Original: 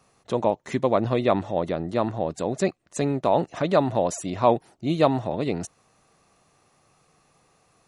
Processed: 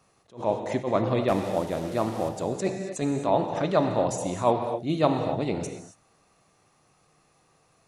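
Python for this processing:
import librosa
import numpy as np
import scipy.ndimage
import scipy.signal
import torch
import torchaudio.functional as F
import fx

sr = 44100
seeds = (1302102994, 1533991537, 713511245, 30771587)

y = fx.delta_mod(x, sr, bps=64000, step_db=-36.0, at=(1.28, 2.29))
y = fx.rev_gated(y, sr, seeds[0], gate_ms=300, shape='flat', drr_db=5.5)
y = fx.attack_slew(y, sr, db_per_s=210.0)
y = y * librosa.db_to_amplitude(-2.5)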